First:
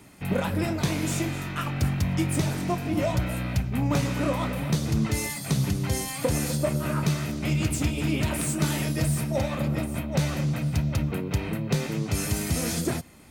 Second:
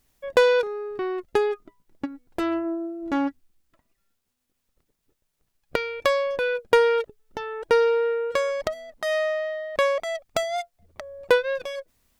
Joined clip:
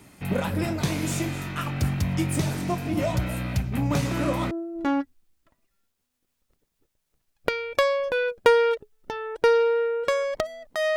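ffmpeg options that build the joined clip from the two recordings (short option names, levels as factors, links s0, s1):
-filter_complex "[1:a]asplit=2[s0][s1];[0:a]apad=whole_dur=10.96,atrim=end=10.96,atrim=end=4.512[s2];[s1]atrim=start=2.778:end=9.23[s3];[s0]atrim=start=1.88:end=2.78,asetpts=PTS-STARTPTS,volume=0.422,afade=t=in:d=0.004:c=hsin,afade=t=out:st=0.896:d=0.004:c=hsin,adelay=159201S[s4];[s2][s3]acrossfade=d=0.004:c1=hsin:c2=hsin[s5];[s5][s4]amix=inputs=2:normalize=0"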